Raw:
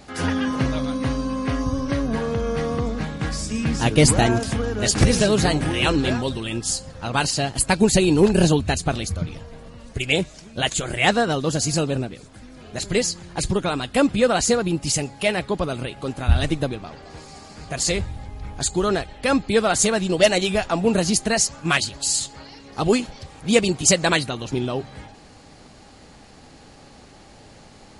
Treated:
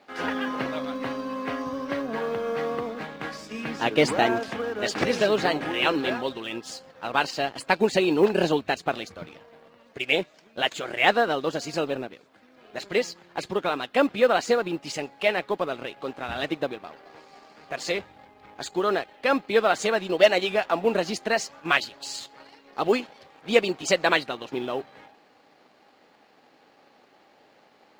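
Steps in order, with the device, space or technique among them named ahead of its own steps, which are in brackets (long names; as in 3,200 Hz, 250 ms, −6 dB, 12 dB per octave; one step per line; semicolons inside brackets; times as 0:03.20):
phone line with mismatched companding (band-pass filter 360–3,200 Hz; mu-law and A-law mismatch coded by A)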